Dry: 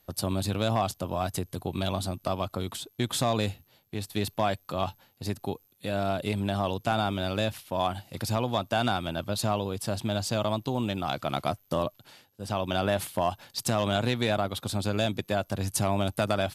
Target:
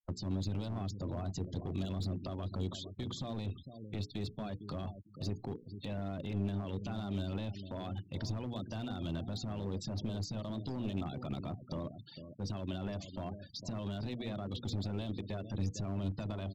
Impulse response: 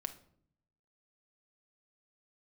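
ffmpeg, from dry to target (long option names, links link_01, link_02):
-filter_complex "[0:a]acompressor=threshold=-28dB:ratio=16,equalizer=frequency=910:width_type=o:width=2:gain=-6.5,alimiter=level_in=3.5dB:limit=-24dB:level=0:latency=1:release=18,volume=-3.5dB,aresample=16000,aresample=44100,acrossover=split=410[link_01][link_02];[link_02]acompressor=threshold=-57dB:ratio=2.5[link_03];[link_01][link_03]amix=inputs=2:normalize=0,lowshelf=frequency=340:gain=-5.5,bandreject=frequency=60:width_type=h:width=6,bandreject=frequency=120:width_type=h:width=6,bandreject=frequency=180:width_type=h:width=6,bandreject=frequency=240:width_type=h:width=6,bandreject=frequency=300:width_type=h:width=6,bandreject=frequency=360:width_type=h:width=6,bandreject=frequency=420:width_type=h:width=6,bandreject=frequency=480:width_type=h:width=6,aecho=1:1:454|908|1362:0.282|0.0648|0.0149,afftfilt=real='re*gte(hypot(re,im),0.00251)':imag='im*gte(hypot(re,im),0.00251)':win_size=1024:overlap=0.75,aeval=exprs='clip(val(0),-1,0.00794)':channel_layout=same,volume=7.5dB"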